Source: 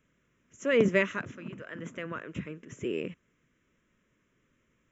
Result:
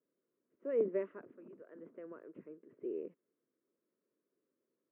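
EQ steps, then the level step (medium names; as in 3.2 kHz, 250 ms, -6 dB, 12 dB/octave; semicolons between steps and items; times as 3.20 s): ladder band-pass 460 Hz, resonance 40%; distance through air 210 m; +1.0 dB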